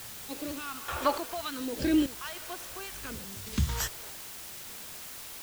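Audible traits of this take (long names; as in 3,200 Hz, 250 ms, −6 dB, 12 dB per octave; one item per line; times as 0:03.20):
sample-and-hold tremolo 3.4 Hz, depth 85%
phaser sweep stages 2, 0.68 Hz, lowest notch 170–1,200 Hz
a quantiser's noise floor 8 bits, dither triangular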